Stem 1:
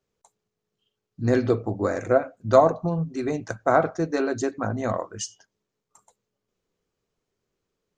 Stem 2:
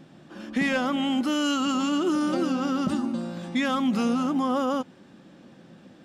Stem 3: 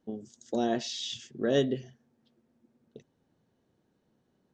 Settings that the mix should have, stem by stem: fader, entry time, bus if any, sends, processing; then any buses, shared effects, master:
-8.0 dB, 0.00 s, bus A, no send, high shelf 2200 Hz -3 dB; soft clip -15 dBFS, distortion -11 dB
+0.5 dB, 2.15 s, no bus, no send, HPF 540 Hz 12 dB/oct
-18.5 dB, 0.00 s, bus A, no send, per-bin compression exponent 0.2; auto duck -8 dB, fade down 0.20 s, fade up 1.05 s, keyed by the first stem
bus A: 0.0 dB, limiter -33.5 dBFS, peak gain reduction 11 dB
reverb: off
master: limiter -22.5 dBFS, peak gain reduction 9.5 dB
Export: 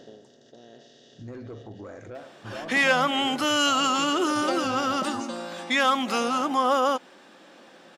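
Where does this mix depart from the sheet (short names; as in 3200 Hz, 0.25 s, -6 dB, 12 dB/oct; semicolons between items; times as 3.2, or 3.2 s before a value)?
stem 2 +0.5 dB -> +7.0 dB; master: missing limiter -22.5 dBFS, peak gain reduction 9.5 dB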